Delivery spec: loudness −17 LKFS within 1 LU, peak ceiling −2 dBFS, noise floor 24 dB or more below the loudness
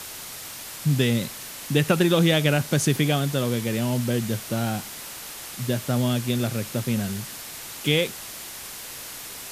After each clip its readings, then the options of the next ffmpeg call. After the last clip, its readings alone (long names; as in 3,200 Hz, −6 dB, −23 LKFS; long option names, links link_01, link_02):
background noise floor −38 dBFS; target noise floor −49 dBFS; integrated loudness −25.0 LKFS; sample peak −6.0 dBFS; target loudness −17.0 LKFS
→ -af "afftdn=noise_reduction=11:noise_floor=-38"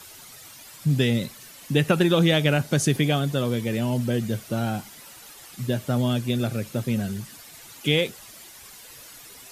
background noise floor −46 dBFS; target noise floor −48 dBFS
→ -af "afftdn=noise_reduction=6:noise_floor=-46"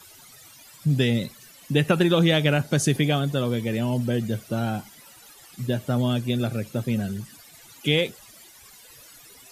background noise floor −50 dBFS; integrated loudness −24.0 LKFS; sample peak −6.0 dBFS; target loudness −17.0 LKFS
→ -af "volume=7dB,alimiter=limit=-2dB:level=0:latency=1"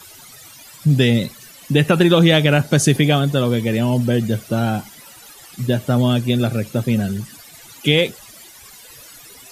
integrated loudness −17.5 LKFS; sample peak −2.0 dBFS; background noise floor −43 dBFS